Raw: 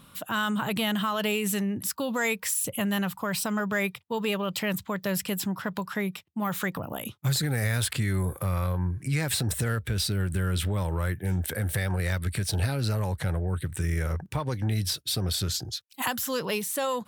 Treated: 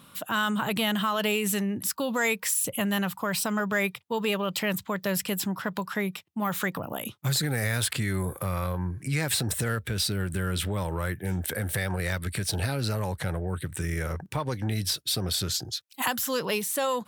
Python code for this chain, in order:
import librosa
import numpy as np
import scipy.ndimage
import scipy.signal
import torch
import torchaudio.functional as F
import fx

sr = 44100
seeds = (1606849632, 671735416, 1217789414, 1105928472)

y = fx.highpass(x, sr, hz=140.0, slope=6)
y = F.gain(torch.from_numpy(y), 1.5).numpy()